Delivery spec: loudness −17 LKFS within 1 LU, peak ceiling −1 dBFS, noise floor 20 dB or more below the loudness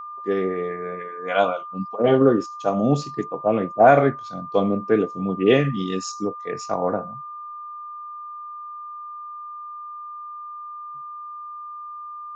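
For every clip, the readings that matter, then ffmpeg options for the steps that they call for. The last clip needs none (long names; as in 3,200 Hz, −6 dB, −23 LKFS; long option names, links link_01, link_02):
interfering tone 1,200 Hz; level of the tone −33 dBFS; integrated loudness −22.0 LKFS; sample peak −3.5 dBFS; target loudness −17.0 LKFS
→ -af "bandreject=frequency=1200:width=30"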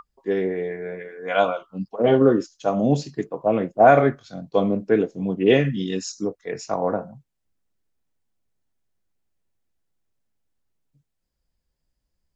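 interfering tone none found; integrated loudness −21.5 LKFS; sample peak −3.5 dBFS; target loudness −17.0 LKFS
→ -af "volume=4.5dB,alimiter=limit=-1dB:level=0:latency=1"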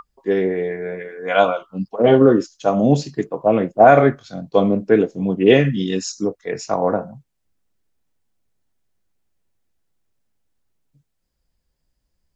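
integrated loudness −17.5 LKFS; sample peak −1.0 dBFS; background noise floor −74 dBFS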